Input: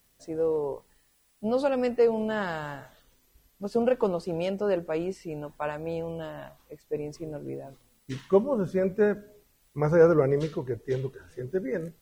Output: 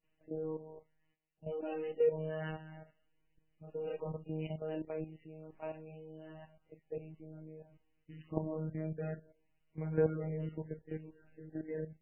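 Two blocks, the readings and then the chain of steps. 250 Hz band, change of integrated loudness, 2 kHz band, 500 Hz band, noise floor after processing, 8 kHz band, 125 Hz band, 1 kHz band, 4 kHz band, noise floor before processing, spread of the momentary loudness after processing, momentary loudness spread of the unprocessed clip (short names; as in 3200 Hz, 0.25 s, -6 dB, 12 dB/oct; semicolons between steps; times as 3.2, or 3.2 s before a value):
-12.0 dB, -12.0 dB, -15.5 dB, -13.0 dB, -77 dBFS, n/a, -7.5 dB, -16.5 dB, under -15 dB, -67 dBFS, 21 LU, 16 LU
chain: robotiser 157 Hz; chorus voices 2, 0.29 Hz, delay 28 ms, depth 4 ms; level quantiser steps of 12 dB; bell 1200 Hz -9 dB 0.95 oct; gain -1 dB; MP3 8 kbps 12000 Hz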